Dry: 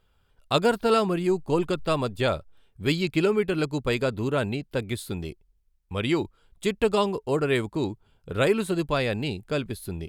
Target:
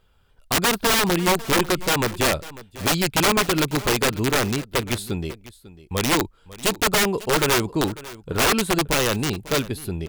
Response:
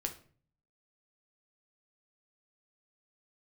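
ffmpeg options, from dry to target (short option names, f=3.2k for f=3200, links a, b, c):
-filter_complex "[0:a]aeval=exprs='(mod(7.94*val(0)+1,2)-1)/7.94':c=same,asplit=2[a][b];[b]aecho=0:1:547:0.126[c];[a][c]amix=inputs=2:normalize=0,volume=5dB"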